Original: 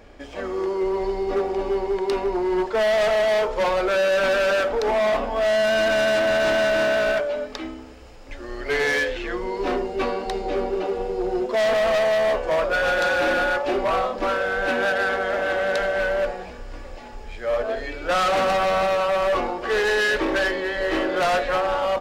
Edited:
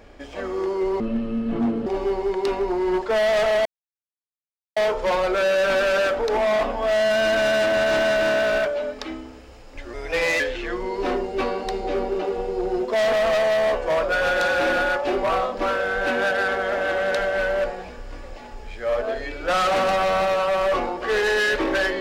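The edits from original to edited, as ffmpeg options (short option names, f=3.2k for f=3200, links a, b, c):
-filter_complex "[0:a]asplit=6[a][b][c][d][e][f];[a]atrim=end=1.004[g];[b]atrim=start=1:end=1.51,asetpts=PTS-STARTPTS,asetrate=26019,aresample=44100,atrim=end_sample=38120,asetpts=PTS-STARTPTS[h];[c]atrim=start=1.506:end=3.3,asetpts=PTS-STARTPTS,afade=t=out:st=1.79:d=0.004:c=hsin,apad=pad_dur=1.11[i];[d]atrim=start=3.3:end=8.474,asetpts=PTS-STARTPTS,afade=t=in:d=0.004:c=hsin[j];[e]atrim=start=8.47:end=9.01,asetpts=PTS-STARTPTS,asetrate=51156,aresample=44100,atrim=end_sample=20529,asetpts=PTS-STARTPTS[k];[f]atrim=start=9.006[l];[g][h]acrossfade=d=0.004:c1=hsin:c2=hsin[m];[i][j]concat=n=2:v=0:a=1[n];[m][n]acrossfade=d=0.004:c1=hsin:c2=hsin[o];[o][k]acrossfade=d=0.004:c1=hsin:c2=hsin[p];[p][l]acrossfade=d=0.004:c1=hsin:c2=hsin"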